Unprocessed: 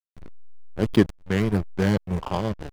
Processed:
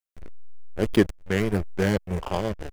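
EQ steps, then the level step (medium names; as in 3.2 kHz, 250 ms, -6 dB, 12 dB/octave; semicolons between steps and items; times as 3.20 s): ten-band graphic EQ 125 Hz -9 dB, 250 Hz -5 dB, 1 kHz -6 dB, 4 kHz -5 dB; +4.0 dB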